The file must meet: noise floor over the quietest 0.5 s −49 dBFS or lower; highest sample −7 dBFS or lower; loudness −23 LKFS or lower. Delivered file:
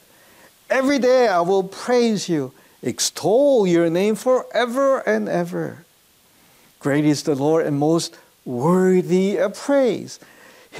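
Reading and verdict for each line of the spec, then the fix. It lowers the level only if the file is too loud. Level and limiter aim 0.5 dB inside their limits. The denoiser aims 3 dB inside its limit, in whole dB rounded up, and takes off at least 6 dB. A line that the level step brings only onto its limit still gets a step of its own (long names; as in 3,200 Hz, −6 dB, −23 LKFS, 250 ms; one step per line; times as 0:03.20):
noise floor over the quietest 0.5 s −56 dBFS: in spec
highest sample −8.0 dBFS: in spec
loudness −19.0 LKFS: out of spec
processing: level −4.5 dB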